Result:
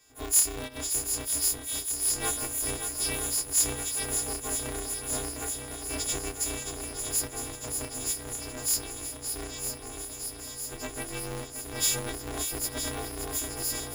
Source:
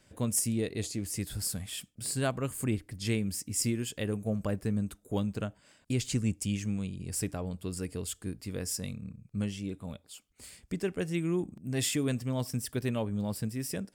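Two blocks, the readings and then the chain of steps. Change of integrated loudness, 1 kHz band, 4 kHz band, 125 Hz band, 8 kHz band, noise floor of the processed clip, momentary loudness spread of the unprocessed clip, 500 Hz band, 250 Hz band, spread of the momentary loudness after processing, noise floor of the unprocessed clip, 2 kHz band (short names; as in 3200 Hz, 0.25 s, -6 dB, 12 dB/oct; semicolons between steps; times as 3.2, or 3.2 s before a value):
+4.0 dB, +5.5 dB, +6.0 dB, -9.0 dB, +10.0 dB, -42 dBFS, 9 LU, -2.5 dB, -9.0 dB, 11 LU, -66 dBFS, +3.5 dB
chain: frequency quantiser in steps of 6 st; swung echo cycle 0.958 s, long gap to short 1.5:1, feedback 71%, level -8 dB; polarity switched at an audio rate 180 Hz; gain -7 dB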